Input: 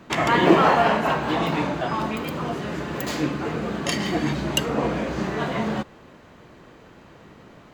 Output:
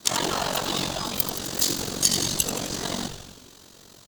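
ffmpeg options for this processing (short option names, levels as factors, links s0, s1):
-filter_complex "[0:a]highshelf=f=2700:g=4.5,bandreject=f=281.4:t=h:w=4,bandreject=f=562.8:t=h:w=4,alimiter=limit=0.266:level=0:latency=1:release=128,atempo=1.9,aexciter=amount=11.7:drive=0.9:freq=3500,aeval=exprs='val(0)*sin(2*PI*23*n/s)':c=same,asplit=2[s0][s1];[s1]asetrate=55563,aresample=44100,atempo=0.793701,volume=0.251[s2];[s0][s2]amix=inputs=2:normalize=0,asplit=2[s3][s4];[s4]asplit=8[s5][s6][s7][s8][s9][s10][s11][s12];[s5]adelay=86,afreqshift=-99,volume=0.355[s13];[s6]adelay=172,afreqshift=-198,volume=0.224[s14];[s7]adelay=258,afreqshift=-297,volume=0.141[s15];[s8]adelay=344,afreqshift=-396,volume=0.0891[s16];[s9]adelay=430,afreqshift=-495,volume=0.0556[s17];[s10]adelay=516,afreqshift=-594,volume=0.0351[s18];[s11]adelay=602,afreqshift=-693,volume=0.0221[s19];[s12]adelay=688,afreqshift=-792,volume=0.014[s20];[s13][s14][s15][s16][s17][s18][s19][s20]amix=inputs=8:normalize=0[s21];[s3][s21]amix=inputs=2:normalize=0,volume=0.631"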